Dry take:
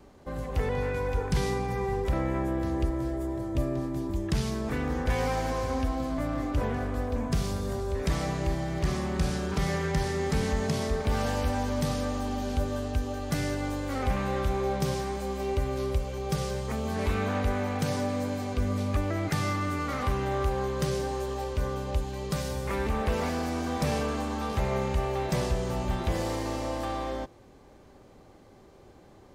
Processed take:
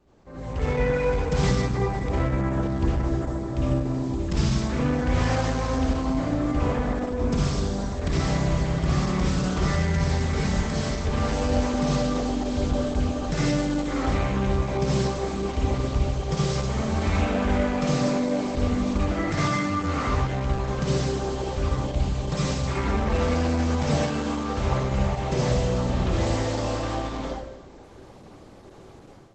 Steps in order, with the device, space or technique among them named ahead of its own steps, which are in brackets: speakerphone in a meeting room (reverberation RT60 0.80 s, pre-delay 51 ms, DRR -4.5 dB; level rider gain up to 11.5 dB; trim -9 dB; Opus 12 kbps 48 kHz)

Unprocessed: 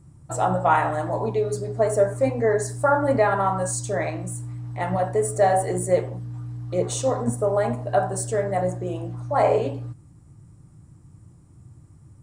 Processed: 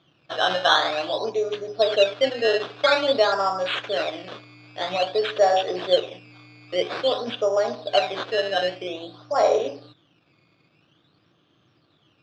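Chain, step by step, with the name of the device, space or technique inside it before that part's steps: circuit-bent sampling toy (decimation with a swept rate 13×, swing 100% 0.5 Hz; cabinet simulation 470–4300 Hz, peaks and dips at 900 Hz -9 dB, 2 kHz -7 dB, 3.5 kHz +5 dB); trim +3.5 dB

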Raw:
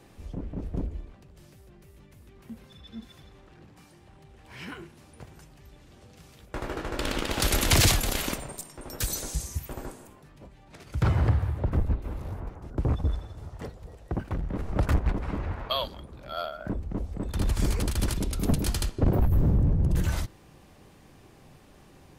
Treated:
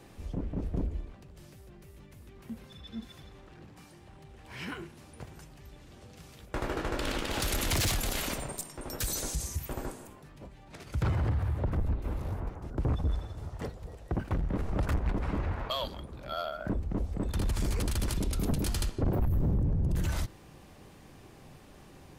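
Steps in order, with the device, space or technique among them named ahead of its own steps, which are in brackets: soft clipper into limiter (saturation -18 dBFS, distortion -17 dB; peak limiter -24.5 dBFS, peak gain reduction 6 dB); trim +1 dB

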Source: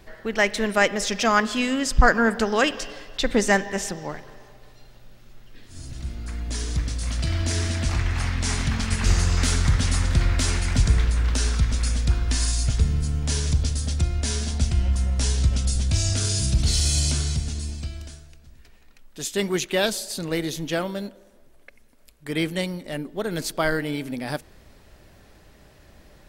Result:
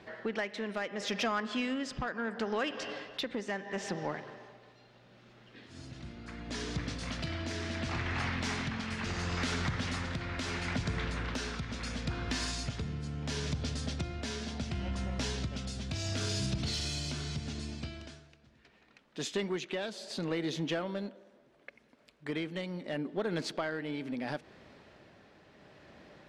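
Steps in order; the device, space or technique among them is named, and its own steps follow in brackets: AM radio (band-pass 150–3800 Hz; compression, threshold -28 dBFS, peak gain reduction 15 dB; saturation -22 dBFS, distortion -21 dB; tremolo 0.73 Hz, depth 38%)

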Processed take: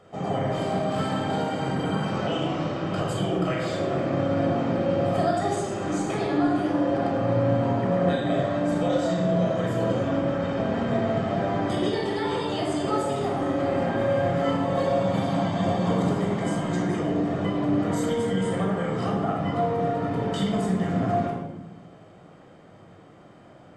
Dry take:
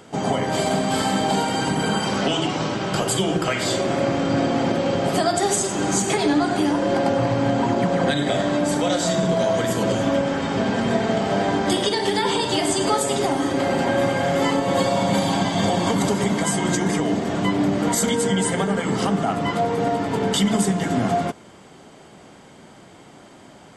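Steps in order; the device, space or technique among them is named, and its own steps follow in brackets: bass shelf 290 Hz -4.5 dB; through cloth (treble shelf 3.2 kHz -15 dB); simulated room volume 3200 m³, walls furnished, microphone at 6.2 m; trim -8 dB

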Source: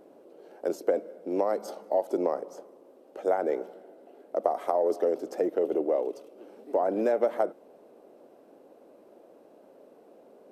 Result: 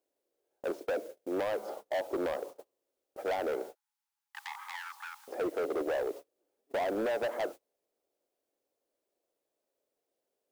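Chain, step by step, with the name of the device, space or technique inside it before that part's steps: aircraft radio (band-pass 330–2700 Hz; hard clipper -28.5 dBFS, distortion -6 dB; white noise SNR 23 dB; gate -42 dBFS, range -31 dB); 3.75–5.28 s: Chebyshev high-pass 820 Hz, order 10

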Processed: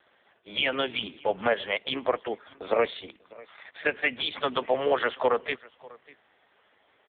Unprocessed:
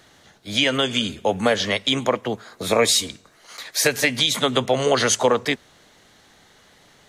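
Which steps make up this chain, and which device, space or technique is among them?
satellite phone (band-pass 350–3200 Hz; delay 595 ms -23 dB; trim -3 dB; AMR-NB 5.15 kbps 8 kHz)

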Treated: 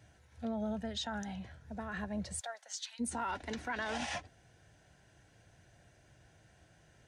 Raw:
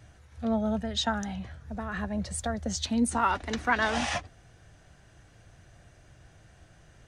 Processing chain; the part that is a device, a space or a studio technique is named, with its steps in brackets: PA system with an anti-feedback notch (high-pass 100 Hz 6 dB/octave; Butterworth band-stop 1.2 kHz, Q 6.9; peak limiter -23 dBFS, peak gain reduction 10 dB); 2.39–2.99 s: high-pass 580 Hz -> 1.4 kHz 24 dB/octave; trim -5.5 dB

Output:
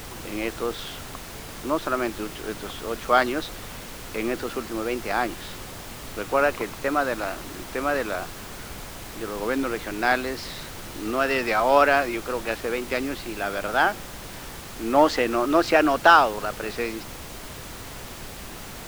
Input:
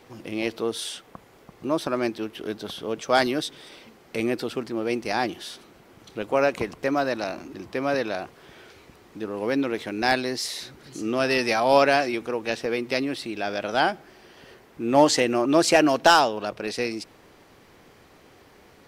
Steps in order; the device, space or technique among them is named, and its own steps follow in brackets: horn gramophone (band-pass 220–3500 Hz; peaking EQ 1.3 kHz +8 dB 0.59 oct; wow and flutter; pink noise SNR 12 dB); trim -1 dB

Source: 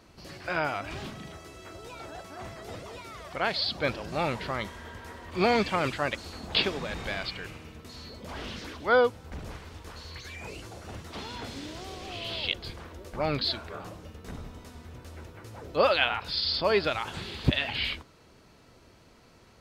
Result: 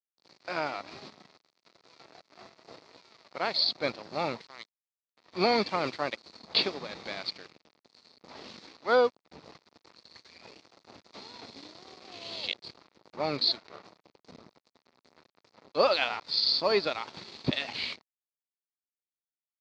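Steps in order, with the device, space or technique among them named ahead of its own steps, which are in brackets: 4.41–5.17 s: amplifier tone stack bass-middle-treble 10-0-10; blown loudspeaker (crossover distortion -39.5 dBFS; cabinet simulation 190–5600 Hz, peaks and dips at 1.6 kHz -6 dB, 3 kHz -7 dB, 4.4 kHz +8 dB)

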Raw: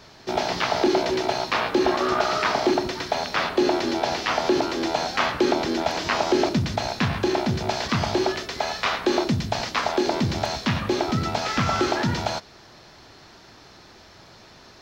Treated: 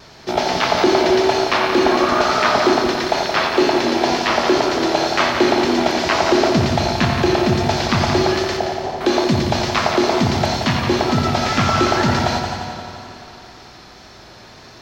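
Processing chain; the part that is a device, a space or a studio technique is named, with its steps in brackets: 8.57–9.01 s: steep low-pass 840 Hz 48 dB/octave; multi-head tape echo (multi-head delay 87 ms, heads first and second, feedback 65%, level -9.5 dB; wow and flutter 25 cents); spring tank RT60 3.6 s, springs 53 ms, chirp 60 ms, DRR 11.5 dB; trim +5 dB

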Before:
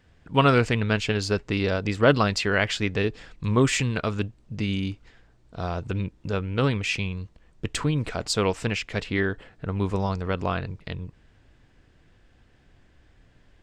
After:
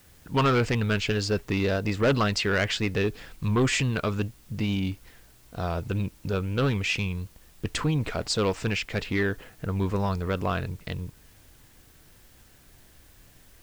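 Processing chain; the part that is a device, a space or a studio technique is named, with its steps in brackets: compact cassette (saturation -17.5 dBFS, distortion -11 dB; low-pass 8 kHz; wow and flutter; white noise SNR 31 dB); trim +1 dB

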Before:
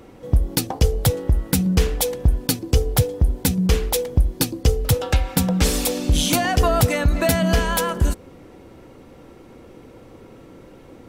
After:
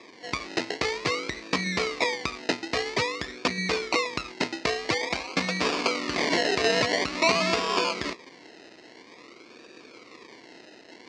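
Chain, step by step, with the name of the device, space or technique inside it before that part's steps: circuit-bent sampling toy (decimation with a swept rate 30×, swing 60% 0.49 Hz; cabinet simulation 470–5800 Hz, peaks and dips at 540 Hz -8 dB, 810 Hz -10 dB, 1.5 kHz -10 dB, 2.2 kHz +5 dB, 3.2 kHz -5 dB, 4.5 kHz +4 dB); trim +3 dB

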